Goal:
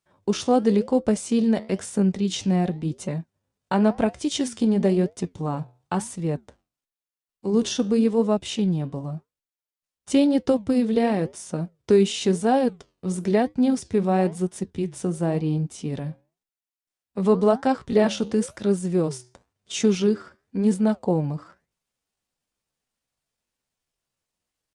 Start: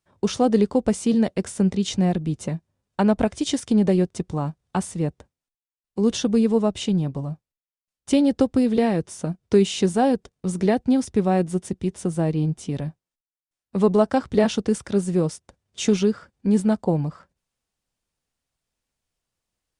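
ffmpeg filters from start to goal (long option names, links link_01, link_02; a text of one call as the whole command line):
ffmpeg -i in.wav -af "flanger=delay=4.8:depth=7.3:regen=-77:speed=1.2:shape=sinusoidal,atempo=0.8,lowshelf=frequency=100:gain=-7.5,volume=4dB" out.wav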